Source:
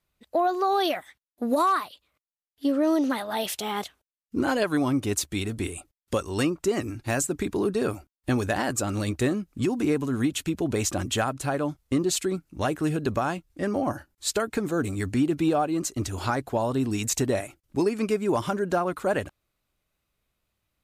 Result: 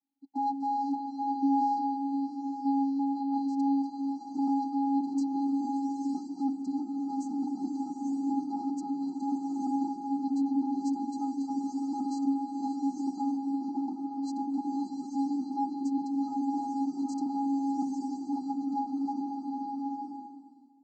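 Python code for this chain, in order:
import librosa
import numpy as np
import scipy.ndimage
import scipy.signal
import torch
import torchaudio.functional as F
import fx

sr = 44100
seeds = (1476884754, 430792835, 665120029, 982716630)

p1 = scipy.signal.sosfilt(scipy.signal.butter(2, 170.0, 'highpass', fs=sr, output='sos'), x)
p2 = fx.high_shelf(p1, sr, hz=2600.0, db=-9.0)
p3 = fx.schmitt(p2, sr, flips_db=-24.5)
p4 = p2 + (p3 * 10.0 ** (-9.0 / 20.0))
p5 = fx.vocoder(p4, sr, bands=16, carrier='square', carrier_hz=275.0)
p6 = 10.0 ** (-27.5 / 20.0) * np.tanh(p5 / 10.0 ** (-27.5 / 20.0))
p7 = fx.brickwall_bandstop(p6, sr, low_hz=1300.0, high_hz=4000.0)
p8 = fx.rev_bloom(p7, sr, seeds[0], attack_ms=910, drr_db=0.5)
y = p8 * 10.0 ** (2.5 / 20.0)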